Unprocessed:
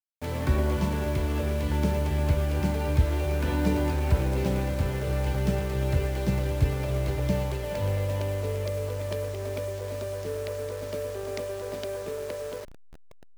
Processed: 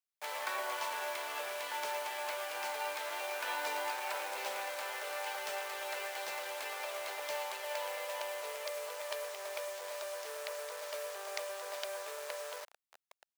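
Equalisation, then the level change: high-pass 720 Hz 24 dB/octave; 0.0 dB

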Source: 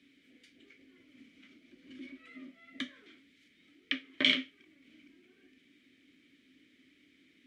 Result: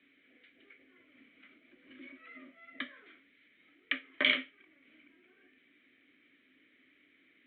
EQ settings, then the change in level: steep low-pass 4.1 kHz 96 dB/octave; three-band isolator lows -14 dB, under 480 Hz, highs -19 dB, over 2.5 kHz; +5.5 dB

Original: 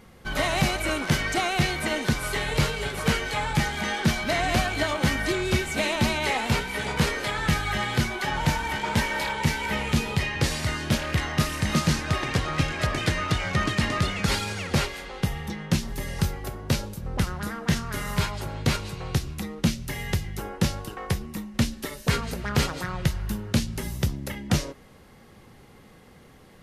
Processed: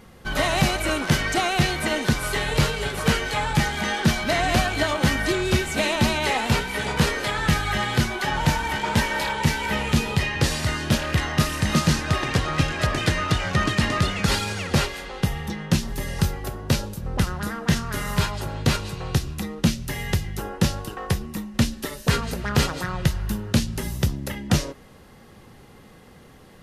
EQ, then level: band-stop 2.2 kHz, Q 19; +3.0 dB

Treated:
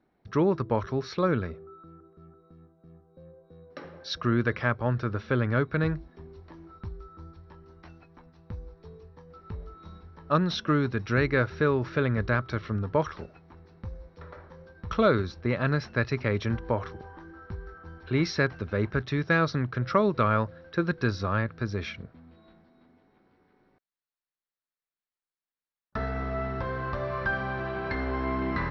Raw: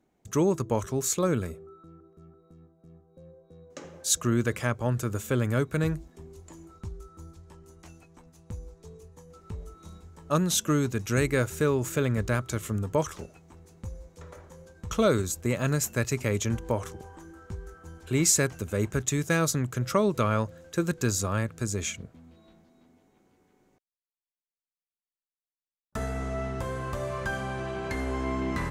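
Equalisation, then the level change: rippled Chebyshev low-pass 5.7 kHz, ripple 6 dB; distance through air 170 m; +6.0 dB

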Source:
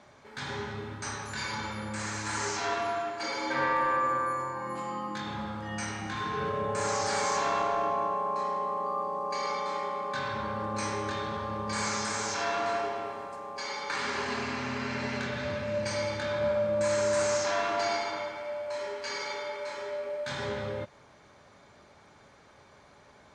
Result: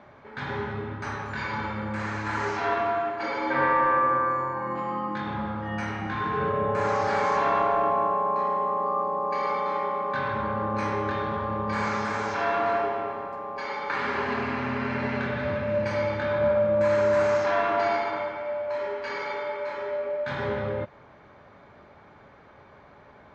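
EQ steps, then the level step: low-pass 2.2 kHz 12 dB/octave; +5.5 dB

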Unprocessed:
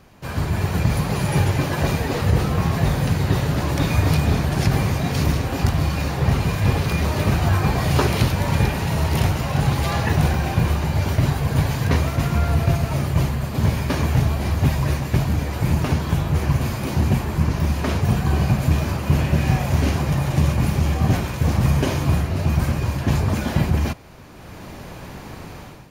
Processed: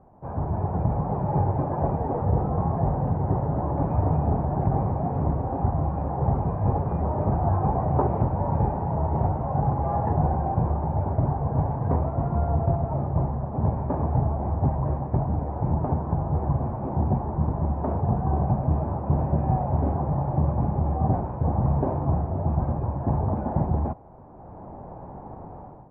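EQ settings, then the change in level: four-pole ladder low-pass 940 Hz, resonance 55%; distance through air 270 m; +5.0 dB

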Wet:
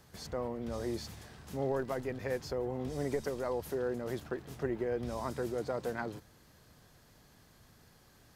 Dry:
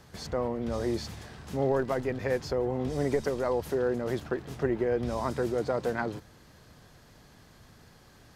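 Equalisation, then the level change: treble shelf 9.7 kHz +10 dB; -6.5 dB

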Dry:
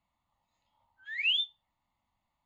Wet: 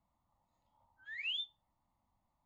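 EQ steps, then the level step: low-pass 3.3 kHz 6 dB/octave; peaking EQ 2.6 kHz -12 dB 1.6 oct; +3.0 dB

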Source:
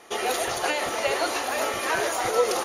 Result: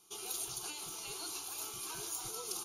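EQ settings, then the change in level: amplifier tone stack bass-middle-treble 6-0-2; treble shelf 9.5 kHz +8 dB; static phaser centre 370 Hz, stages 8; +5.5 dB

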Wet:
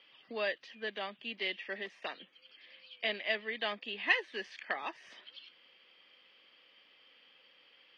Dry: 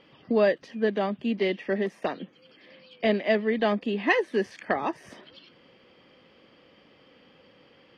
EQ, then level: high-pass 1.5 kHz 6 dB/octave; distance through air 96 m; peaking EQ 3.2 kHz +9.5 dB 1.6 oct; -6.0 dB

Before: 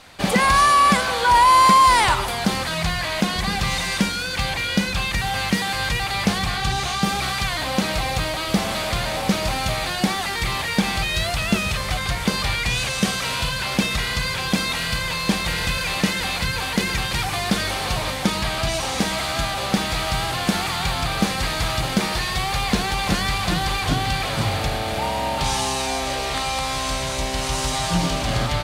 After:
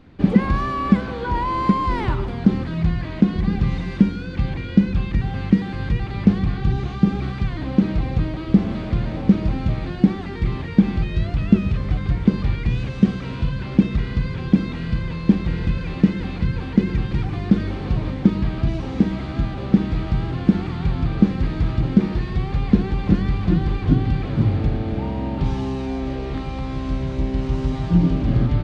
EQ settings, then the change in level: tape spacing loss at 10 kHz 32 dB; resonant low shelf 460 Hz +11.5 dB, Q 1.5; -5.5 dB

